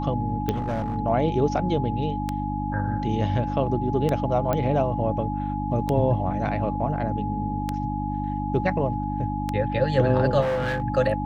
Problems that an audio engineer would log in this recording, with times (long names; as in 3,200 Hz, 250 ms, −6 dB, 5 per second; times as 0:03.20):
mains hum 50 Hz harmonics 6 −29 dBFS
scratch tick 33 1/3 rpm −12 dBFS
whistle 840 Hz −30 dBFS
0:00.51–0:00.96: clipping −22.5 dBFS
0:04.53: click −12 dBFS
0:10.41–0:10.82: clipping −22 dBFS